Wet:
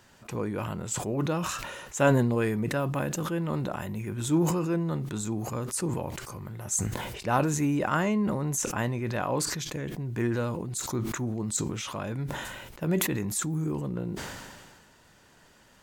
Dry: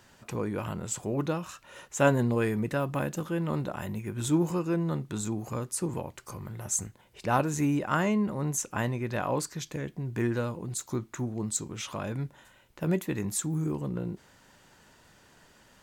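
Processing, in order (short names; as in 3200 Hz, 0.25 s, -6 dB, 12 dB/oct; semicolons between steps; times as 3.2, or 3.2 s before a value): sustainer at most 33 dB/s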